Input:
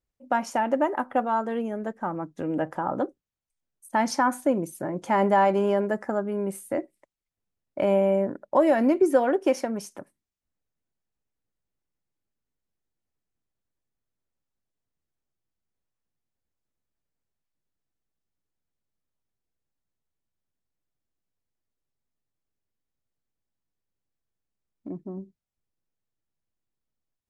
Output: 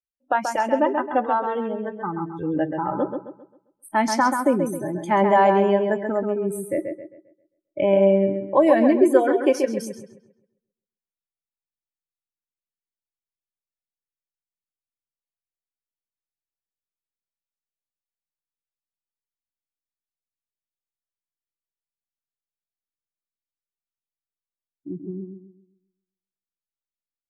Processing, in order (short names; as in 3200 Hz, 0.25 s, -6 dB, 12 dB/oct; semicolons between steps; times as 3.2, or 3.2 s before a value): spectral noise reduction 25 dB; on a send: darkening echo 0.133 s, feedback 36%, low-pass 4400 Hz, level -6 dB; on the sum: gain +3.5 dB